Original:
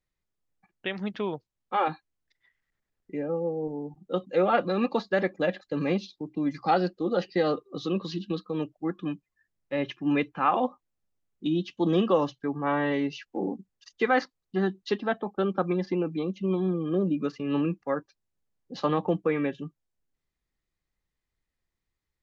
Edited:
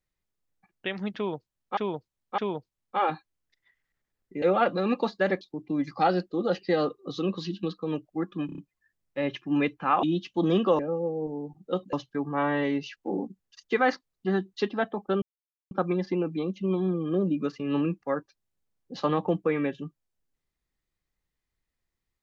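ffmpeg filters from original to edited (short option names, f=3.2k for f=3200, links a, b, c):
-filter_complex "[0:a]asplit=13[a][b][c][d][e][f][g][h][i][j][k][l][m];[a]atrim=end=1.772[n];[b]atrim=start=1.158:end=1.772[o];[c]atrim=start=1.158:end=3.202[p];[d]atrim=start=4.338:end=5.332[q];[e]atrim=start=6.078:end=9.162[r];[f]atrim=start=9.128:end=9.162[s];[g]atrim=start=9.128:end=9.162[t];[h]atrim=start=9.128:end=9.162[u];[i]atrim=start=9.128:end=10.582[v];[j]atrim=start=11.458:end=12.222[w];[k]atrim=start=3.198:end=4.342[x];[l]atrim=start=12.218:end=15.51,asetpts=PTS-STARTPTS,afade=t=out:st=3.288:d=0.004:c=hsin,apad=pad_dur=0.49[y];[m]atrim=start=15.51,asetpts=PTS-STARTPTS,afade=t=in:d=0.004:c=hsin[z];[n][o]acrossfade=d=0.004:c1=hsin:c2=hsin[aa];[aa][p]acrossfade=d=0.004:c1=hsin:c2=hsin[ab];[ab][q]acrossfade=d=0.004:c1=hsin:c2=hsin[ac];[ac][r]acrossfade=d=0.004:c1=hsin:c2=hsin[ad];[ad][s]acrossfade=d=0.004:c1=hsin:c2=hsin[ae];[ae][t]acrossfade=d=0.004:c1=hsin:c2=hsin[af];[af][u]acrossfade=d=0.004:c1=hsin:c2=hsin[ag];[ag][v]acrossfade=d=0.004:c1=hsin:c2=hsin[ah];[ah][w]acrossfade=d=0.004:c1=hsin:c2=hsin[ai];[ai][x]acrossfade=d=0.004:c1=hsin:c2=hsin[aj];[y][z]concat=n=2:v=0:a=1[ak];[aj][ak]acrossfade=d=0.004:c1=hsin:c2=hsin"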